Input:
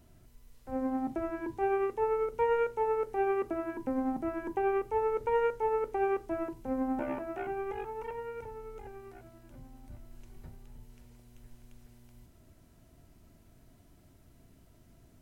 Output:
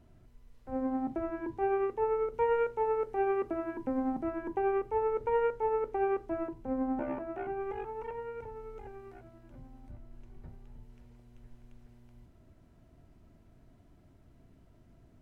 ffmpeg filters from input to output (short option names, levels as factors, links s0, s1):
-af "asetnsamples=n=441:p=0,asendcmd='2.34 lowpass f 2700;4.3 lowpass f 2000;6.47 lowpass f 1500;7.61 lowpass f 2200;8.56 lowpass f 2900;9.2 lowpass f 2100;9.91 lowpass f 1400;10.49 lowpass f 1900',lowpass=f=2000:p=1"